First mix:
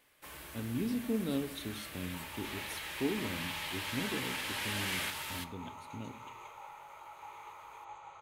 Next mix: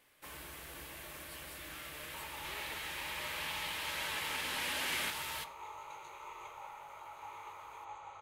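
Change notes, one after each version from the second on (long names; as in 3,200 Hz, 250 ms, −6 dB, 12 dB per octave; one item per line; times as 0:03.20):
speech: muted
second sound: send on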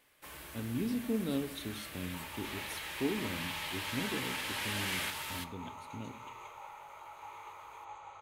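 speech: unmuted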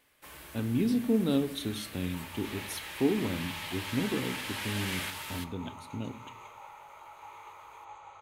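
speech +7.0 dB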